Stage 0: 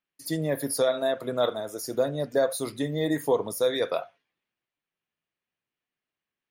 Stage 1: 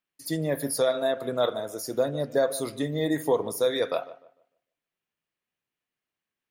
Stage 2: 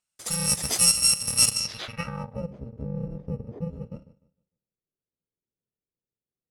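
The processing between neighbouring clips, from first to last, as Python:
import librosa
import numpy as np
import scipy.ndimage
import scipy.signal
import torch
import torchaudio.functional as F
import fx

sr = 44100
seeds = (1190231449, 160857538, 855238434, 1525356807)

y1 = fx.echo_filtered(x, sr, ms=150, feedback_pct=29, hz=1900.0, wet_db=-16)
y2 = fx.bit_reversed(y1, sr, seeds[0], block=128)
y2 = fx.filter_sweep_lowpass(y2, sr, from_hz=8600.0, to_hz=400.0, start_s=1.53, end_s=2.5, q=2.2)
y2 = y2 * 10.0 ** (3.5 / 20.0)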